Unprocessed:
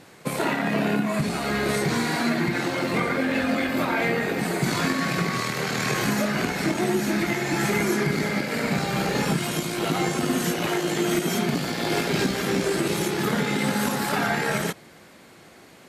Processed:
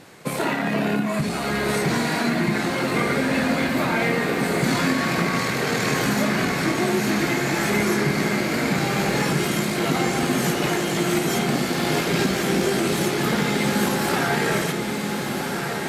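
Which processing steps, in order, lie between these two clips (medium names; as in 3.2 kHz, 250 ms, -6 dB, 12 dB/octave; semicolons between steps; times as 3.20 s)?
in parallel at -9 dB: saturation -31 dBFS, distortion -6 dB; on the sum: echo that smears into a reverb 1396 ms, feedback 61%, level -5 dB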